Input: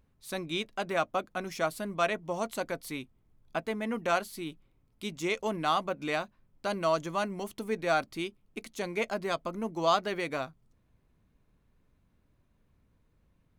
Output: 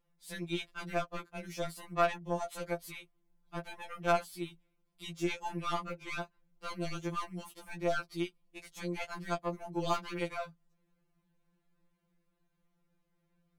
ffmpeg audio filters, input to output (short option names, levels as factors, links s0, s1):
-af "lowshelf=f=170:g=-3.5,aeval=exprs='0.251*(cos(1*acos(clip(val(0)/0.251,-1,1)))-cos(1*PI/2))+0.0316*(cos(3*acos(clip(val(0)/0.251,-1,1)))-cos(3*PI/2))+0.0398*(cos(5*acos(clip(val(0)/0.251,-1,1)))-cos(5*PI/2))+0.0112*(cos(8*acos(clip(val(0)/0.251,-1,1)))-cos(8*PI/2))':c=same,afftfilt=real='re*2.83*eq(mod(b,8),0)':imag='im*2.83*eq(mod(b,8),0)':win_size=2048:overlap=0.75,volume=0.562"